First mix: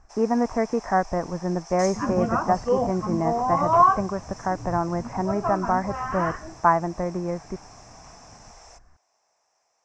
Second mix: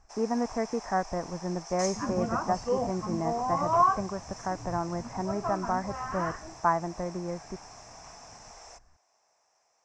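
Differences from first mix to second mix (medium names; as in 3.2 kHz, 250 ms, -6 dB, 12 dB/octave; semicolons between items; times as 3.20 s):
speech -6.5 dB; second sound -6.0 dB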